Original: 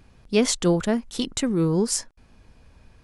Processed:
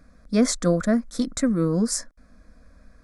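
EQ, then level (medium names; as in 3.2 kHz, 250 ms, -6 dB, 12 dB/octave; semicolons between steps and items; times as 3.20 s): treble shelf 8.2 kHz -7.5 dB; static phaser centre 580 Hz, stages 8; +3.5 dB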